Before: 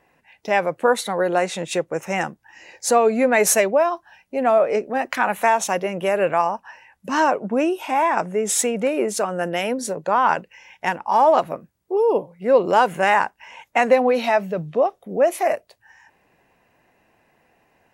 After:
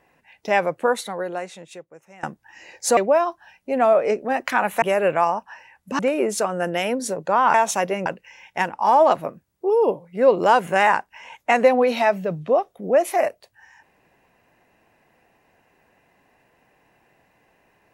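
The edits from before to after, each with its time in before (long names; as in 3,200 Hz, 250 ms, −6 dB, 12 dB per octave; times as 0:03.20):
0:00.64–0:02.23: fade out quadratic, to −23.5 dB
0:02.97–0:03.62: remove
0:05.47–0:05.99: move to 0:10.33
0:07.16–0:08.78: remove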